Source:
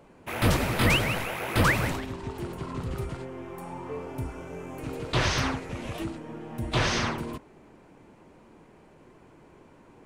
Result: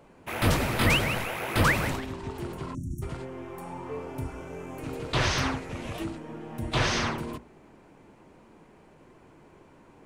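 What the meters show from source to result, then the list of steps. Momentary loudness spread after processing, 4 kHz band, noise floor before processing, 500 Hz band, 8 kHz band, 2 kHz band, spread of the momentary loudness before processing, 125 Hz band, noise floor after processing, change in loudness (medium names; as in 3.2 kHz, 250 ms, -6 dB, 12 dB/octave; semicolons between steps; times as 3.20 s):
16 LU, 0.0 dB, -55 dBFS, -0.5 dB, 0.0 dB, 0.0 dB, 16 LU, -1.0 dB, -56 dBFS, -0.5 dB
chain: spectral selection erased 2.75–3.03 s, 360–5500 Hz; hum notches 60/120/180/240/300/360/420/480/540/600 Hz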